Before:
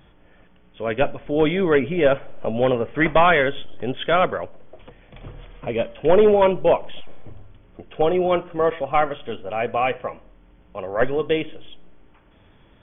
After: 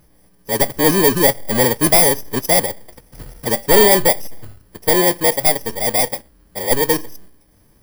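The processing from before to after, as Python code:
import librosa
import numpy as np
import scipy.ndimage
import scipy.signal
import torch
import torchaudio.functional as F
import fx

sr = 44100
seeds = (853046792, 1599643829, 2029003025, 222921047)

p1 = fx.bit_reversed(x, sr, seeds[0], block=32)
p2 = fx.stretch_vocoder(p1, sr, factor=0.61)
p3 = np.clip(p2, -10.0 ** (-14.5 / 20.0), 10.0 ** (-14.5 / 20.0))
p4 = p2 + F.gain(torch.from_numpy(p3), -9.0).numpy()
y = fx.leveller(p4, sr, passes=1)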